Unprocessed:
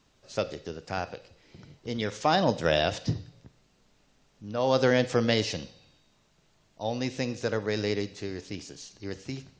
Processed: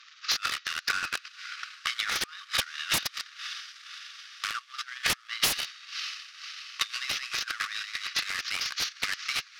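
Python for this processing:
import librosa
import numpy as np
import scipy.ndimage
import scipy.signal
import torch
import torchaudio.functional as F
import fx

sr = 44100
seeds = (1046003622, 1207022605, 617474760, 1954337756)

p1 = fx.cvsd(x, sr, bps=32000)
p2 = fx.quant_dither(p1, sr, seeds[0], bits=6, dither='none')
p3 = p1 + F.gain(torch.from_numpy(p2), -6.0).numpy()
p4 = fx.air_absorb(p3, sr, metres=67.0)
p5 = fx.over_compress(p4, sr, threshold_db=-34.0, ratio=-1.0)
p6 = fx.brickwall_highpass(p5, sr, low_hz=1100.0)
p7 = p6 + fx.echo_diffused(p6, sr, ms=575, feedback_pct=61, wet_db=-13.5, dry=0)
p8 = fx.fold_sine(p7, sr, drive_db=14, ceiling_db=-18.0)
p9 = fx.transient(p8, sr, attack_db=10, sustain_db=-12)
y = F.gain(torch.from_numpy(p9), -7.5).numpy()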